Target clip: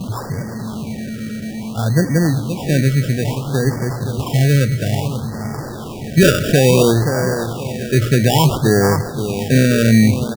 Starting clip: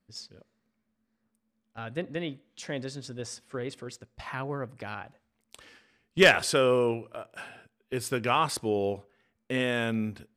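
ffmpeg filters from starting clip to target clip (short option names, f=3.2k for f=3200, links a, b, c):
-filter_complex "[0:a]aeval=exprs='val(0)+0.5*0.0158*sgn(val(0))':c=same,highpass=62,equalizer=f=130:t=o:w=1.6:g=15,bandreject=f=60:t=h:w=6,bandreject=f=120:t=h:w=6,asplit=2[a][b];[b]aecho=0:1:523|1046|1569|2092:0.316|0.111|0.0387|0.0136[c];[a][c]amix=inputs=2:normalize=0,acrusher=samples=21:mix=1:aa=0.000001,alimiter=level_in=11.5dB:limit=-1dB:release=50:level=0:latency=1,afftfilt=real='re*(1-between(b*sr/1024,880*pow(3200/880,0.5+0.5*sin(2*PI*0.59*pts/sr))/1.41,880*pow(3200/880,0.5+0.5*sin(2*PI*0.59*pts/sr))*1.41))':imag='im*(1-between(b*sr/1024,880*pow(3200/880,0.5+0.5*sin(2*PI*0.59*pts/sr))/1.41,880*pow(3200/880,0.5+0.5*sin(2*PI*0.59*pts/sr))*1.41))':win_size=1024:overlap=0.75,volume=-2dB"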